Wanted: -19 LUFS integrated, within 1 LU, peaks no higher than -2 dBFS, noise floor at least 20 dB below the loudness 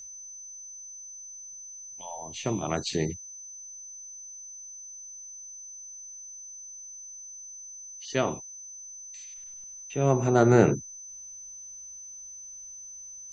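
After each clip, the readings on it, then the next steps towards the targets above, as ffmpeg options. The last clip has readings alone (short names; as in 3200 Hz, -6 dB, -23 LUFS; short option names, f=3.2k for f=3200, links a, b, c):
steady tone 6100 Hz; tone level -41 dBFS; loudness -32.0 LUFS; peak -5.0 dBFS; loudness target -19.0 LUFS
-> -af "bandreject=f=6.1k:w=30"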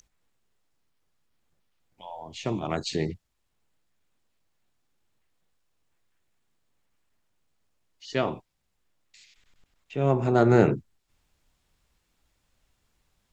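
steady tone none; loudness -25.5 LUFS; peak -5.5 dBFS; loudness target -19.0 LUFS
-> -af "volume=6.5dB,alimiter=limit=-2dB:level=0:latency=1"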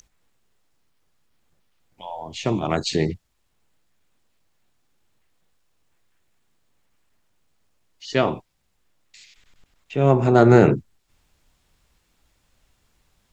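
loudness -19.5 LUFS; peak -2.0 dBFS; noise floor -69 dBFS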